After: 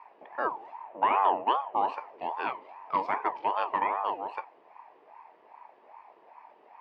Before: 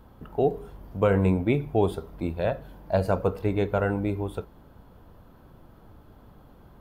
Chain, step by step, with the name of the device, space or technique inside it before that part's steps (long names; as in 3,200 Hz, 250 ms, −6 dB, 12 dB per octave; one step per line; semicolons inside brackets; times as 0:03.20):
0:00.84–0:01.73: inverse Chebyshev low-pass filter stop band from 9,000 Hz, stop band 60 dB
voice changer toy (ring modulator whose carrier an LFO sweeps 680 Hz, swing 45%, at 2.5 Hz; loudspeaker in its box 530–4,500 Hz, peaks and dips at 530 Hz −5 dB, 940 Hz +7 dB, 1,400 Hz −10 dB, 2,500 Hz +7 dB, 3,900 Hz −9 dB)